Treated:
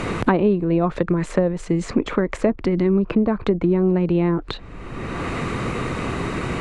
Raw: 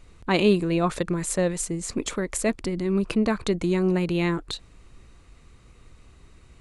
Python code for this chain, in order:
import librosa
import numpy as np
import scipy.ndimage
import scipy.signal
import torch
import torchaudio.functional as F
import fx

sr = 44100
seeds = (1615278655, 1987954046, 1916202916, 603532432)

y = fx.env_lowpass_down(x, sr, base_hz=980.0, full_db=-20.5)
y = fx.band_squash(y, sr, depth_pct=100)
y = y * 10.0 ** (5.0 / 20.0)